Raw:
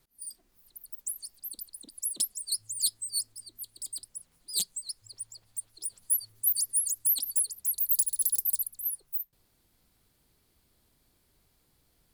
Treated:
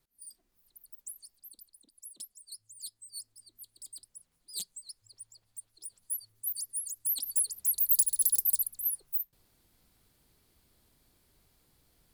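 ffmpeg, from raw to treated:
-af "volume=9dB,afade=t=out:st=0.88:d=1.04:silence=0.398107,afade=t=in:st=2.92:d=0.66:silence=0.446684,afade=t=in:st=6.94:d=0.67:silence=0.334965"

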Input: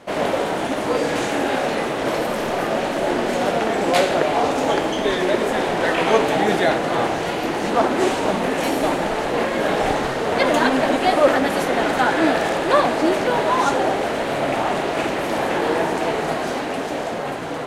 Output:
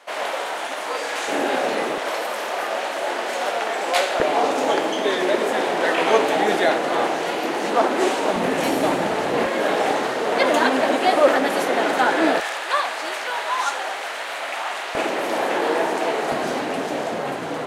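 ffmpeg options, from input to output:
-af "asetnsamples=n=441:p=0,asendcmd='1.28 highpass f 280;1.98 highpass f 650;4.2 highpass f 290;8.36 highpass f 100;9.46 highpass f 270;12.4 highpass f 1100;14.95 highpass f 310;16.32 highpass f 130',highpass=790"

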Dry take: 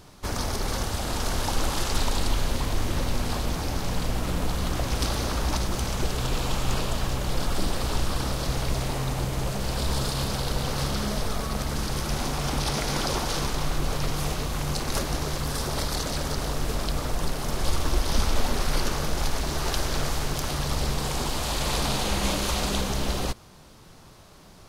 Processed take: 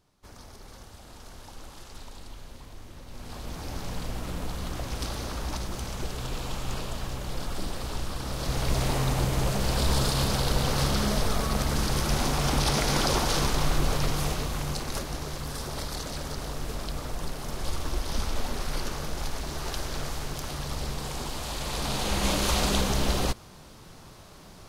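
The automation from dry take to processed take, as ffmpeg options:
-af "volume=9.5dB,afade=t=in:st=3.06:d=0.71:silence=0.237137,afade=t=in:st=8.23:d=0.64:silence=0.375837,afade=t=out:st=13.76:d=1.28:silence=0.398107,afade=t=in:st=21.72:d=0.81:silence=0.421697"

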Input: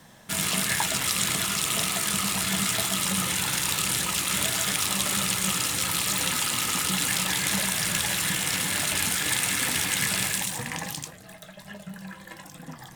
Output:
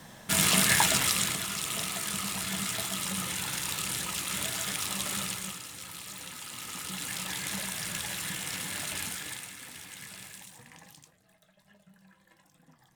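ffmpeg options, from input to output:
-af "volume=10dB,afade=t=out:st=0.84:d=0.55:silence=0.334965,afade=t=out:st=5.2:d=0.41:silence=0.334965,afade=t=in:st=6.39:d=0.95:silence=0.421697,afade=t=out:st=8.99:d=0.54:silence=0.298538"

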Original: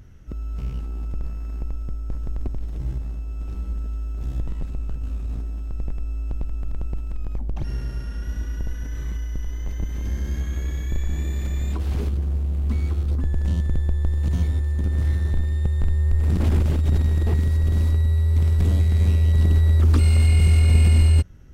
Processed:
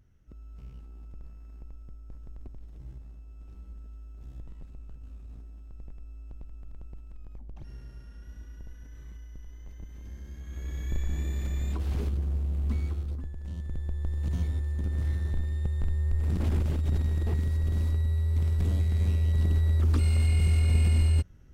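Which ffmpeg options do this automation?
-af "volume=4.5dB,afade=t=in:st=10.41:d=0.51:silence=0.281838,afade=t=out:st=12.7:d=0.66:silence=0.251189,afade=t=in:st=13.36:d=0.94:silence=0.316228"

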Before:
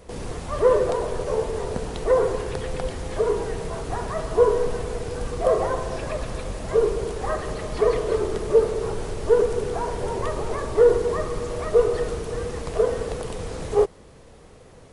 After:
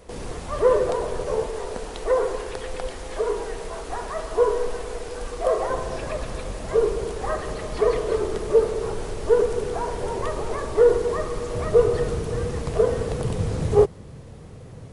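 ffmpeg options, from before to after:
-af "asetnsamples=n=441:p=0,asendcmd='1.47 equalizer g -14;5.7 equalizer g -2.5;11.54 equalizer g 7.5;13.19 equalizer g 13.5',equalizer=f=120:t=o:w=1.9:g=-3"

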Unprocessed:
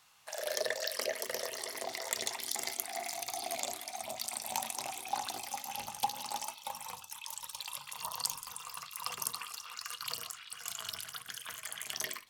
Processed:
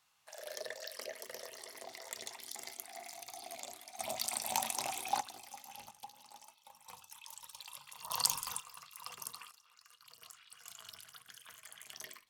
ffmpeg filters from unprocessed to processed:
-af "asetnsamples=n=441:p=0,asendcmd='3.99 volume volume 1.5dB;5.21 volume volume -10.5dB;5.91 volume volume -17.5dB;6.88 volume volume -8dB;8.1 volume volume 4dB;8.6 volume volume -8.5dB;9.51 volume volume -20dB;10.22 volume volume -11dB',volume=-9.5dB"

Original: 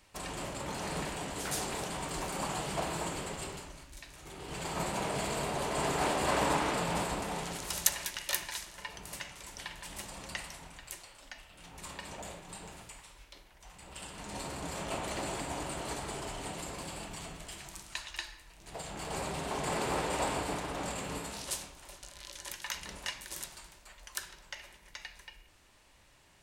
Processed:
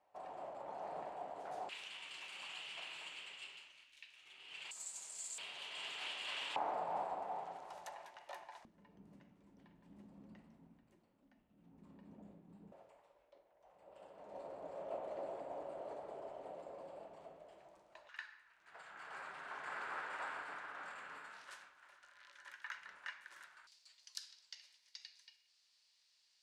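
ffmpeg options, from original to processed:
-af "asetnsamples=n=441:p=0,asendcmd='1.69 bandpass f 2800;4.71 bandpass f 7300;5.38 bandpass f 3000;6.56 bandpass f 760;8.65 bandpass f 230;12.72 bandpass f 580;18.09 bandpass f 1500;23.67 bandpass f 4700',bandpass=f=710:t=q:w=3.9:csg=0"

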